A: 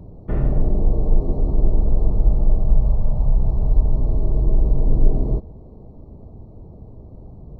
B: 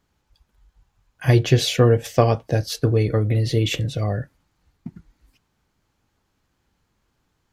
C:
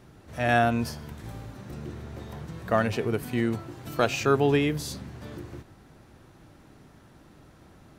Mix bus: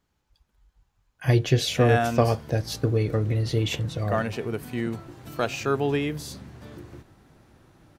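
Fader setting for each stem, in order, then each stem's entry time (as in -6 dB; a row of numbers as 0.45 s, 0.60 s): mute, -4.5 dB, -2.5 dB; mute, 0.00 s, 1.40 s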